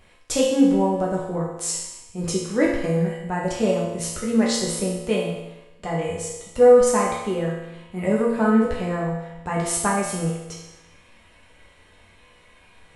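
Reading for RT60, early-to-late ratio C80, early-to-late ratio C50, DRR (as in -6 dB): 1.0 s, 4.5 dB, 1.5 dB, -5.5 dB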